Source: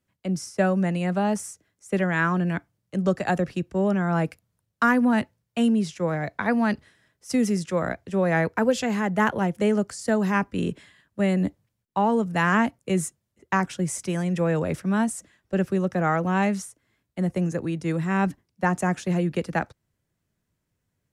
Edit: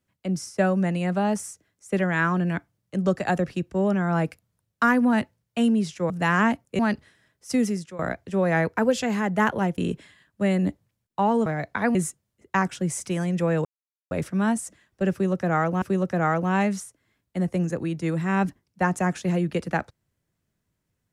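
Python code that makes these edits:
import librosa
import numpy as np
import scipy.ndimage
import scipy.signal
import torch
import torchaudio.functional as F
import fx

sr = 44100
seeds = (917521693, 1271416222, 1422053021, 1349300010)

y = fx.edit(x, sr, fx.swap(start_s=6.1, length_s=0.49, other_s=12.24, other_length_s=0.69),
    fx.fade_out_to(start_s=7.4, length_s=0.39, floor_db=-18.0),
    fx.cut(start_s=9.58, length_s=0.98),
    fx.insert_silence(at_s=14.63, length_s=0.46),
    fx.repeat(start_s=15.64, length_s=0.7, count=2), tone=tone)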